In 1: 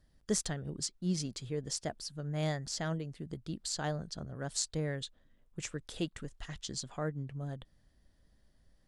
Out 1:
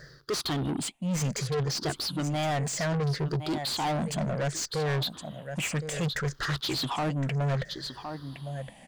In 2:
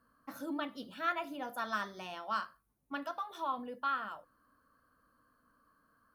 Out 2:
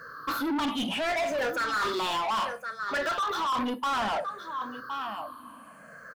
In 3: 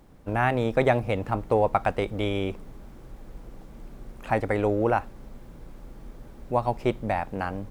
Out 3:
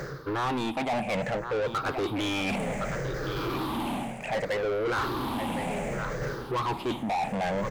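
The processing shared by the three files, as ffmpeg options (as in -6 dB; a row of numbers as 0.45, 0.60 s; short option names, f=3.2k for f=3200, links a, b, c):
-filter_complex "[0:a]afftfilt=real='re*pow(10,18/40*sin(2*PI*(0.56*log(max(b,1)*sr/1024/100)/log(2)-(-0.64)*(pts-256)/sr)))':imag='im*pow(10,18/40*sin(2*PI*(0.56*log(max(b,1)*sr/1024/100)/log(2)-(-0.64)*(pts-256)/sr)))':win_size=1024:overlap=0.75,areverse,acompressor=threshold=-36dB:ratio=12,areverse,equalizer=f=140:w=3.2:g=9,bandreject=f=5.5k:w=17,asplit=2[a][b];[b]aecho=0:1:1065:0.15[c];[a][c]amix=inputs=2:normalize=0,asplit=2[d][e];[e]highpass=f=720:p=1,volume=29dB,asoftclip=type=tanh:threshold=-24dB[f];[d][f]amix=inputs=2:normalize=0,lowpass=f=3.8k:p=1,volume=-6dB,volume=3dB"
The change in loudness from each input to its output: +7.5, +9.0, -4.0 LU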